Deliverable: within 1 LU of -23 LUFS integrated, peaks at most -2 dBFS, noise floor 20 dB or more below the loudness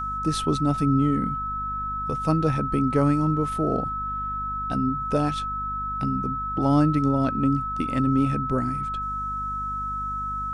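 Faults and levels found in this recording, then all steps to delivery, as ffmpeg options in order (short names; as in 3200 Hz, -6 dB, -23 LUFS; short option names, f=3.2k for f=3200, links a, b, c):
hum 50 Hz; harmonics up to 250 Hz; hum level -35 dBFS; steady tone 1300 Hz; tone level -27 dBFS; loudness -25.0 LUFS; peak -8.5 dBFS; loudness target -23.0 LUFS
-> -af "bandreject=f=50:t=h:w=4,bandreject=f=100:t=h:w=4,bandreject=f=150:t=h:w=4,bandreject=f=200:t=h:w=4,bandreject=f=250:t=h:w=4"
-af "bandreject=f=1.3k:w=30"
-af "volume=2dB"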